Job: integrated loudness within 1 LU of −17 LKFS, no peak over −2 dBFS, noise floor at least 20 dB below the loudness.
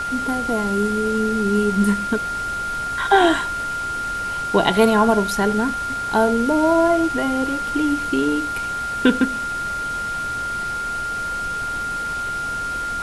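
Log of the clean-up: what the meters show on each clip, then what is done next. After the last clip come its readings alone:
interfering tone 1,400 Hz; level of the tone −23 dBFS; background noise floor −26 dBFS; target noise floor −41 dBFS; integrated loudness −20.5 LKFS; sample peak −1.5 dBFS; target loudness −17.0 LKFS
→ notch filter 1,400 Hz, Q 30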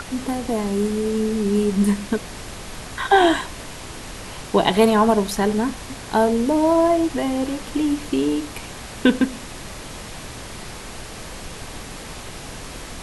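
interfering tone none found; background noise floor −36 dBFS; target noise floor −41 dBFS
→ noise reduction from a noise print 6 dB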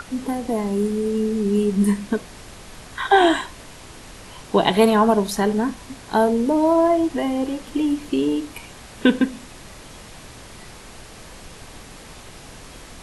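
background noise floor −42 dBFS; integrated loudness −20.5 LKFS; sample peak −1.5 dBFS; target loudness −17.0 LKFS
→ level +3.5 dB
brickwall limiter −2 dBFS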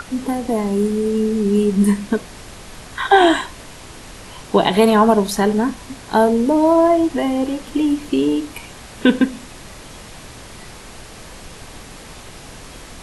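integrated loudness −17.0 LKFS; sample peak −2.0 dBFS; background noise floor −38 dBFS

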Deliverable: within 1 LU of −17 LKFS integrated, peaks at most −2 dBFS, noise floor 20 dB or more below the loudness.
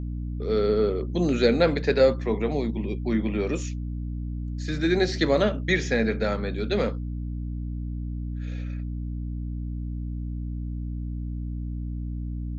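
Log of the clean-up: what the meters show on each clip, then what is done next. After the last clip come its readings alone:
mains hum 60 Hz; hum harmonics up to 300 Hz; level of the hum −28 dBFS; integrated loudness −27.0 LKFS; sample peak −7.5 dBFS; target loudness −17.0 LKFS
→ mains-hum notches 60/120/180/240/300 Hz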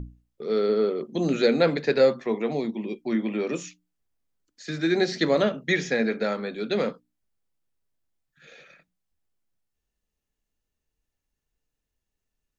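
mains hum none found; integrated loudness −25.0 LKFS; sample peak −8.5 dBFS; target loudness −17.0 LKFS
→ level +8 dB
brickwall limiter −2 dBFS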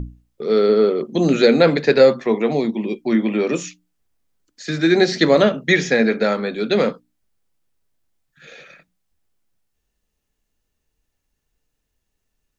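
integrated loudness −17.5 LKFS; sample peak −2.0 dBFS; background noise floor −76 dBFS

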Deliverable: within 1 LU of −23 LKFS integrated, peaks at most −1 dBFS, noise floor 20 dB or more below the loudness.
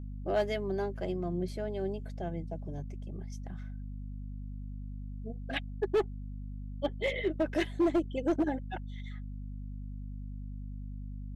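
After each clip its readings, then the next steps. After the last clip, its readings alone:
share of clipped samples 0.6%; peaks flattened at −22.0 dBFS; mains hum 50 Hz; hum harmonics up to 250 Hz; level of the hum −38 dBFS; integrated loudness −36.0 LKFS; sample peak −22.0 dBFS; target loudness −23.0 LKFS
→ clipped peaks rebuilt −22 dBFS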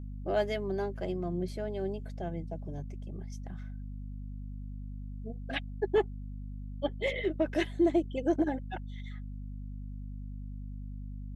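share of clipped samples 0.0%; mains hum 50 Hz; hum harmonics up to 250 Hz; level of the hum −38 dBFS
→ mains-hum notches 50/100/150/200/250 Hz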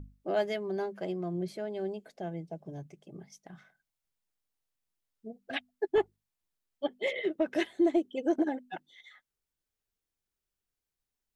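mains hum none found; integrated loudness −33.0 LKFS; sample peak −16.0 dBFS; target loudness −23.0 LKFS
→ level +10 dB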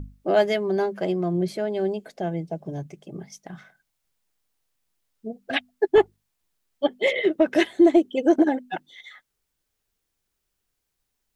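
integrated loudness −23.0 LKFS; sample peak −6.0 dBFS; background noise floor −79 dBFS

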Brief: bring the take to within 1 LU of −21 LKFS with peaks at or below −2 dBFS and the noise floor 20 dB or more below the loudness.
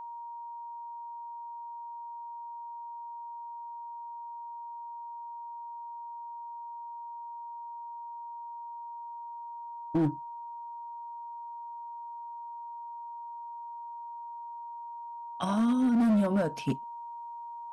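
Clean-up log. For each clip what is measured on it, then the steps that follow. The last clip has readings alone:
share of clipped samples 1.0%; peaks flattened at −21.5 dBFS; interfering tone 940 Hz; level of the tone −39 dBFS; integrated loudness −36.0 LKFS; sample peak −21.5 dBFS; target loudness −21.0 LKFS
→ clipped peaks rebuilt −21.5 dBFS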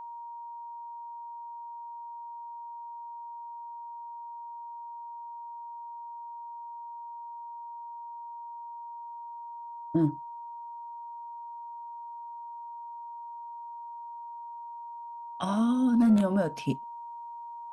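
share of clipped samples 0.0%; interfering tone 940 Hz; level of the tone −39 dBFS
→ notch filter 940 Hz, Q 30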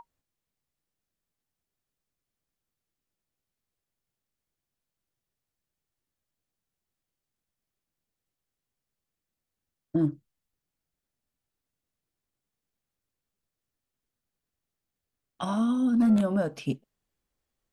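interfering tone none found; integrated loudness −27.0 LKFS; sample peak −15.0 dBFS; target loudness −21.0 LKFS
→ level +6 dB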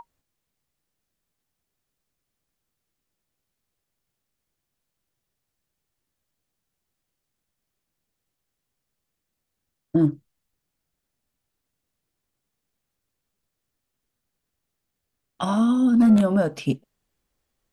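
integrated loudness −21.0 LKFS; sample peak −9.0 dBFS; background noise floor −82 dBFS

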